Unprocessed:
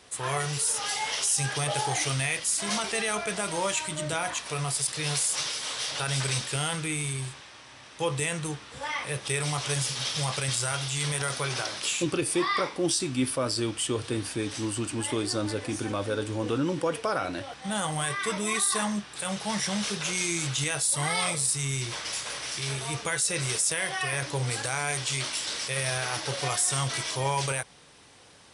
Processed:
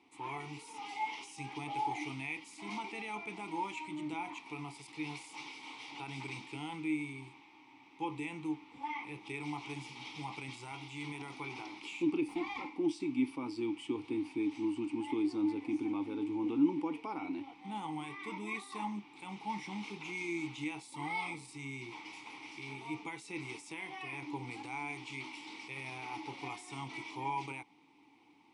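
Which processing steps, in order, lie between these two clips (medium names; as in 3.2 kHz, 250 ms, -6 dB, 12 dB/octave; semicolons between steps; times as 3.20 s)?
12.28–12.75 s: comb filter that takes the minimum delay 3.8 ms; vowel filter u; trim +4 dB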